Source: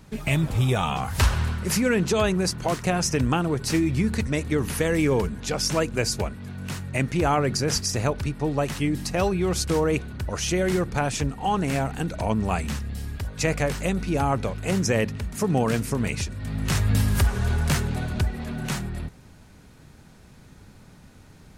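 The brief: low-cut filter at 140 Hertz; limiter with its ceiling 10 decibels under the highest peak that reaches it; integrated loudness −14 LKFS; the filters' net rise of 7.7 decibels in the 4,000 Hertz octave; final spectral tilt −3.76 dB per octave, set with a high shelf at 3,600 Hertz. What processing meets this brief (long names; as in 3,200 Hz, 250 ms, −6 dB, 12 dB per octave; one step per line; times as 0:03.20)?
high-pass filter 140 Hz
high-shelf EQ 3,600 Hz +5 dB
parametric band 4,000 Hz +6.5 dB
level +13 dB
brickwall limiter −2.5 dBFS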